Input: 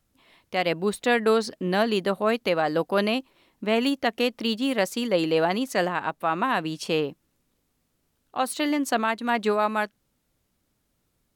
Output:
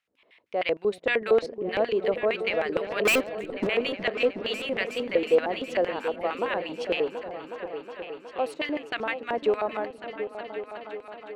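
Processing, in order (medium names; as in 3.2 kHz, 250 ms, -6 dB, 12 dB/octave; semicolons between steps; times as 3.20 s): LFO band-pass square 6.5 Hz 490–2300 Hz; 3.05–3.67 s: waveshaping leveller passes 5; delay with an opening low-pass 366 ms, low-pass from 200 Hz, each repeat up 2 oct, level -6 dB; trim +3.5 dB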